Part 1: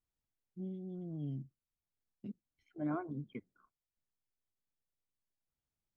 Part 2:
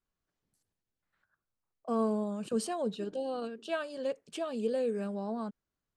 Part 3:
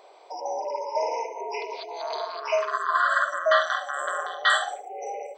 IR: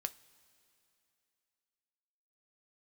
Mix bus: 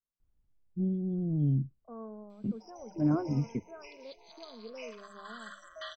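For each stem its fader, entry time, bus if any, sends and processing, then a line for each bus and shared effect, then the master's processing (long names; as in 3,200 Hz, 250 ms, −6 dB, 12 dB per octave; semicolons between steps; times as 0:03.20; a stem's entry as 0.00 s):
+2.5 dB, 0.20 s, no send, spectral tilt −4 dB per octave
−14.5 dB, 0.00 s, no send, Butterworth low-pass 1,500 Hz; mains-hum notches 50/100/150/200 Hz
−15.0 dB, 2.30 s, send −10.5 dB, flat-topped bell 860 Hz −12.5 dB 2.4 octaves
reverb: on, pre-delay 3 ms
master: no processing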